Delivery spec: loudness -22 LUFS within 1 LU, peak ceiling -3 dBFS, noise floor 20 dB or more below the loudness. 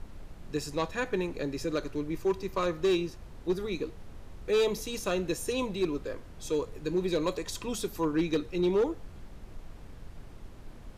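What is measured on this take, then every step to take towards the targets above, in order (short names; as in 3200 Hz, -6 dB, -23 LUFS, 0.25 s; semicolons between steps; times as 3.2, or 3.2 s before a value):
clipped 0.7%; flat tops at -21.0 dBFS; noise floor -48 dBFS; noise floor target -52 dBFS; loudness -31.5 LUFS; peak -21.0 dBFS; loudness target -22.0 LUFS
-> clip repair -21 dBFS; noise print and reduce 6 dB; gain +9.5 dB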